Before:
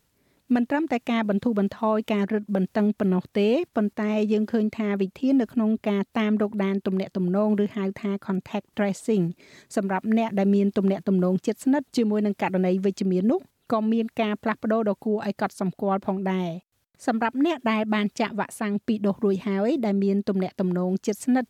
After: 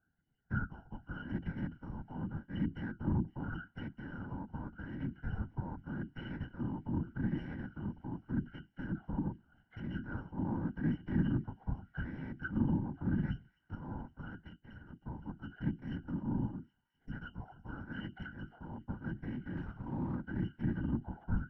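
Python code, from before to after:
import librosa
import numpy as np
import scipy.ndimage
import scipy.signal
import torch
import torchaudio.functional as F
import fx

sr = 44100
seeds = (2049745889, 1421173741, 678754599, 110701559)

p1 = fx.bit_reversed(x, sr, seeds[0], block=128)
p2 = fx.octave_resonator(p1, sr, note='F#', decay_s=0.19)
p3 = fx.spec_box(p2, sr, start_s=16.81, length_s=0.31, low_hz=410.0, high_hz=4900.0, gain_db=-14)
p4 = fx.quant_float(p3, sr, bits=2, at=(19.57, 20.15))
p5 = fx.whisperise(p4, sr, seeds[1])
p6 = fx.filter_lfo_lowpass(p5, sr, shape='sine', hz=0.84, low_hz=940.0, high_hz=2100.0, q=5.2)
p7 = p6 + fx.echo_wet_highpass(p6, sr, ms=257, feedback_pct=78, hz=3200.0, wet_db=-18.0, dry=0)
p8 = fx.upward_expand(p7, sr, threshold_db=-58.0, expansion=1.5, at=(14.47, 15.01), fade=0.02)
y = F.gain(torch.from_numpy(p8), 2.0).numpy()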